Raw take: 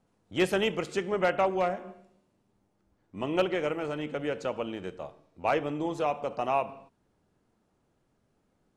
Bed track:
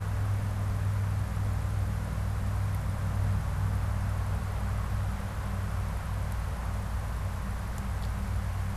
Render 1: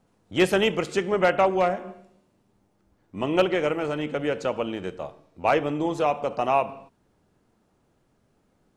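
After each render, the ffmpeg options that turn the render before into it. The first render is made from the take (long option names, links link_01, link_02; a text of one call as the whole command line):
ffmpeg -i in.wav -af "volume=5.5dB" out.wav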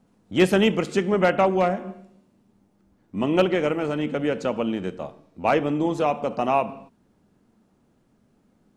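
ffmpeg -i in.wav -af "equalizer=frequency=220:width_type=o:width=0.87:gain=8.5" out.wav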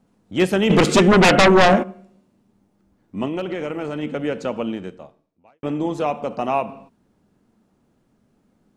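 ffmpeg -i in.wav -filter_complex "[0:a]asplit=3[link_01][link_02][link_03];[link_01]afade=type=out:start_time=0.69:duration=0.02[link_04];[link_02]aeval=exprs='0.376*sin(PI/2*3.55*val(0)/0.376)':channel_layout=same,afade=type=in:start_time=0.69:duration=0.02,afade=type=out:start_time=1.82:duration=0.02[link_05];[link_03]afade=type=in:start_time=1.82:duration=0.02[link_06];[link_04][link_05][link_06]amix=inputs=3:normalize=0,asettb=1/sr,asplit=3[link_07][link_08][link_09];[link_07]atrim=end=3.274[link_10];[link_08]atrim=start=3.27:end=4.03,asetpts=PTS-STARTPTS,afade=type=in:duration=0.004:curve=qsin,afade=type=out:start_time=0.756:duration=0.004:curve=qsin,acompressor=threshold=-22dB:ratio=6:attack=3.2:release=140:knee=1:detection=peak[link_11];[link_09]atrim=start=4.026[link_12];[link_10][link_11]acrossfade=duration=0.004:curve1=hsin:curve2=qsin[link_13];[link_13][link_12]acrossfade=duration=0.004:curve1=qsin:curve2=hsin,asplit=2[link_14][link_15];[link_14]atrim=end=5.63,asetpts=PTS-STARTPTS,afade=type=out:start_time=4.7:duration=0.93:curve=qua[link_16];[link_15]atrim=start=5.63,asetpts=PTS-STARTPTS,afade=type=in:duration=0.004:curve=hsin[link_17];[link_16][link_17]concat=n=2:v=0:a=1" out.wav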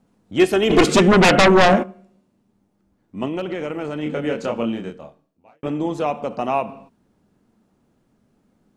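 ffmpeg -i in.wav -filter_complex "[0:a]asettb=1/sr,asplit=3[link_01][link_02][link_03];[link_01]atrim=end=0.394[link_04];[link_02]atrim=start=0.39:end=0.88,asetpts=PTS-STARTPTS,afade=type=in:duration=0.004:curve=qsin,afade=type=out:start_time=0.486:duration=0.004:curve=qsin,aecho=1:1:2.8:0.65,atrim=end_sample=21609[link_05];[link_03]atrim=start=0.876[link_06];[link_04][link_05]acrossfade=duration=0.004:curve1=hsin:curve2=qsin[link_07];[link_07][link_06]acrossfade=duration=0.004:curve1=qsin:curve2=hsin,asettb=1/sr,asplit=3[link_08][link_09][link_10];[link_08]atrim=end=4.034[link_11];[link_09]atrim=start=4.03:end=5.68,asetpts=PTS-STARTPTS,afade=type=in:duration=0.004:curve=qsin,afade=type=out:start_time=1.646:duration=0.004:curve=qsin,asplit=2[link_12][link_13];[link_13]adelay=26,volume=-3dB[link_14];[link_12][link_14]amix=inputs=2:normalize=0,atrim=end_sample=72765[link_15];[link_10]atrim=start=5.676[link_16];[link_11][link_15]acrossfade=duration=0.004:curve1=hsin:curve2=qsin[link_17];[link_17][link_16]acrossfade=duration=0.004:curve1=qsin:curve2=hsin,asplit=3[link_18][link_19][link_20];[link_18]atrim=end=1.862[link_21];[link_19]atrim=start=1.858:end=3.222,asetpts=PTS-STARTPTS,volume=-3dB[link_22];[link_20]atrim=start=3.218[link_23];[link_21][link_22]acrossfade=duration=0.004:curve1=hsin:curve2=hsin[link_24];[link_24][link_23]acrossfade=duration=0.004:curve1=hsin:curve2=hsin" out.wav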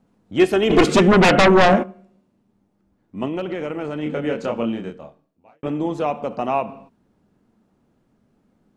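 ffmpeg -i in.wav -af "highshelf=frequency=4600:gain=-6" out.wav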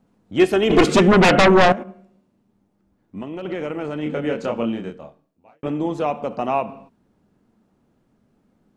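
ffmpeg -i in.wav -filter_complex "[0:a]asettb=1/sr,asplit=3[link_01][link_02][link_03];[link_01]atrim=end=1.724[link_04];[link_02]atrim=start=1.72:end=3.45,asetpts=PTS-STARTPTS,afade=type=in:duration=0.004:curve=qsin,afade=type=out:start_time=1.726:duration=0.004:curve=qsin,acompressor=threshold=-27dB:ratio=6:attack=3.2:release=140:knee=1:detection=peak[link_05];[link_03]atrim=start=3.446[link_06];[link_04][link_05]acrossfade=duration=0.004:curve1=hsin:curve2=qsin[link_07];[link_07][link_06]acrossfade=duration=0.004:curve1=qsin:curve2=hsin" out.wav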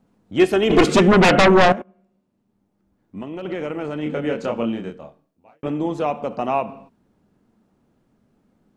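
ffmpeg -i in.wav -filter_complex "[0:a]asplit=2[link_01][link_02];[link_01]atrim=end=1.82,asetpts=PTS-STARTPTS,afade=type=out:start_time=1.816:duration=0.004:curve=hsin:silence=0.133352[link_03];[link_02]atrim=start=1.82,asetpts=PTS-STARTPTS,afade=type=in:duration=1.82:curve=qsin:silence=0.133352[link_04];[link_03][link_04]concat=n=2:v=0:a=1" out.wav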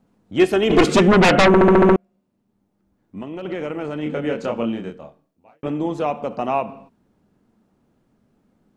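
ffmpeg -i in.wav -filter_complex "[0:a]asplit=8[link_01][link_02][link_03][link_04][link_05][link_06][link_07][link_08];[link_01]atrim=end=1.542[link_09];[link_02]atrim=start=1.468:end=1.542[link_10];[link_03]atrim=start=1.468:end=1.542[link_11];[link_04]atrim=start=1.468:end=1.542[link_12];[link_05]atrim=start=1.468:end=1.542[link_13];[link_06]atrim=start=1.468:end=1.542[link_14];[link_07]atrim=start=1.468:end=1.542[link_15];[link_08]atrim=start=1.958[link_16];[link_09][link_10]acrossfade=duration=0.004:curve1=hsin:curve2=hsin[link_17];[link_17][link_11]acrossfade=duration=0.004:curve1=hsin:curve2=hsin[link_18];[link_18][link_12]acrossfade=duration=0.004:curve1=hsin:curve2=hsin[link_19];[link_19][link_13]acrossfade=duration=0.004:curve1=hsin:curve2=hsin[link_20];[link_20][link_14]acrossfade=duration=0.004:curve1=hsin:curve2=hsin[link_21];[link_21][link_15]acrossfade=duration=0.004:curve1=hsin:curve2=hsin[link_22];[link_22][link_16]acrossfade=duration=0.004:curve1=hsin:curve2=hsin" out.wav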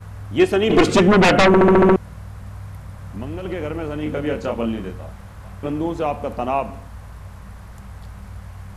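ffmpeg -i in.wav -i bed.wav -filter_complex "[1:a]volume=-4.5dB[link_01];[0:a][link_01]amix=inputs=2:normalize=0" out.wav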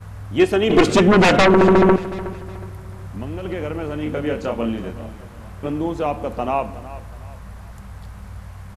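ffmpeg -i in.wav -af "aecho=1:1:367|734|1101:0.158|0.0586|0.0217" out.wav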